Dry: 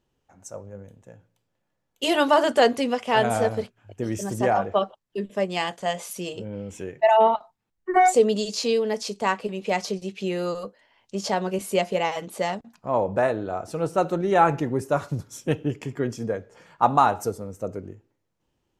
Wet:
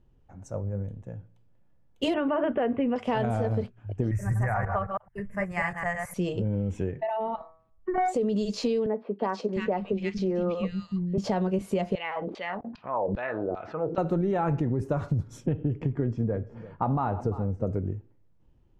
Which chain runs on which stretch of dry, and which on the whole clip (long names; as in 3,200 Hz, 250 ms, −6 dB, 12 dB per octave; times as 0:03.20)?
0:02.14–0:02.96: Butterworth low-pass 2,900 Hz 48 dB per octave + notch filter 860 Hz, Q 16
0:04.11–0:06.14: delay that plays each chunk backwards 108 ms, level −5 dB + drawn EQ curve 130 Hz 0 dB, 200 Hz −12 dB, 300 Hz −20 dB, 550 Hz −10 dB, 2,000 Hz +8 dB, 3,400 Hz −24 dB, 5,300 Hz −9 dB, 9,800 Hz +7 dB
0:06.88–0:07.98: low-pass filter 6,000 Hz + hum removal 161.4 Hz, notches 14 + downward compressor, threshold −28 dBFS
0:08.86–0:11.18: high-frequency loss of the air 100 metres + three-band delay without the direct sound mids, highs, lows 330/700 ms, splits 200/1,800 Hz
0:11.95–0:13.98: auto-filter band-pass saw down 2.5 Hz 310–4,700 Hz + high-frequency loss of the air 190 metres + envelope flattener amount 50%
0:15.46–0:17.67: head-to-tape spacing loss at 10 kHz 20 dB + single-tap delay 342 ms −22 dB
whole clip: RIAA equalisation playback; brickwall limiter −13 dBFS; downward compressor, threshold −23 dBFS